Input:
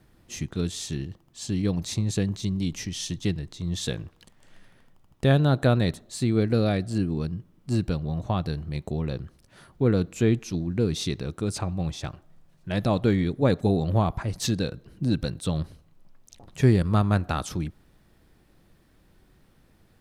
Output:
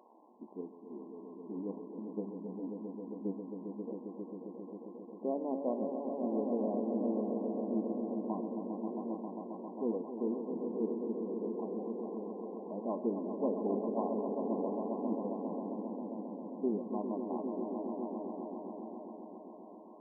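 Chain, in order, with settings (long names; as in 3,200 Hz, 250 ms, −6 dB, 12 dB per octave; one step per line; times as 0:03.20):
spike at every zero crossing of −17 dBFS
echo that builds up and dies away 134 ms, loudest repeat 5, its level −7.5 dB
flanger 1 Hz, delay 8 ms, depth 3.6 ms, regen +77%
linear-phase brick-wall band-pass 200–1,100 Hz
level −6.5 dB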